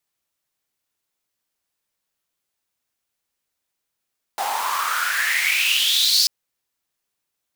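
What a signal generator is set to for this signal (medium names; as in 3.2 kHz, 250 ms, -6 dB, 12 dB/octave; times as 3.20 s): swept filtered noise pink, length 1.89 s highpass, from 750 Hz, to 4.8 kHz, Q 7.2, exponential, gain ramp +9 dB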